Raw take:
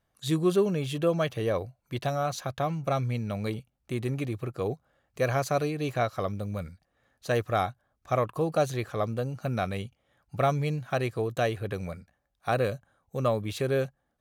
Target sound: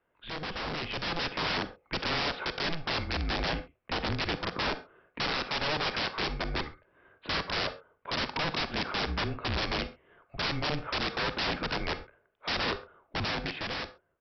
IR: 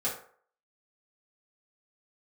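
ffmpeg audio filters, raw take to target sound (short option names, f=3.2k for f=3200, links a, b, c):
-filter_complex "[0:a]acompressor=threshold=-28dB:ratio=4,equalizer=f=63:w=0.48:g=-14.5,highpass=f=170:t=q:w=0.5412,highpass=f=170:t=q:w=1.307,lowpass=f=2.9k:t=q:w=0.5176,lowpass=f=2.9k:t=q:w=0.7071,lowpass=f=2.9k:t=q:w=1.932,afreqshift=-160,aresample=11025,aeval=exprs='(mod(59.6*val(0)+1,2)-1)/59.6':c=same,aresample=44100,dynaudnorm=f=230:g=9:m=6.5dB,asplit=2[a][b];[1:a]atrim=start_sample=2205,atrim=end_sample=4410,adelay=40[c];[b][c]afir=irnorm=-1:irlink=0,volume=-17.5dB[d];[a][d]amix=inputs=2:normalize=0,volume=4dB"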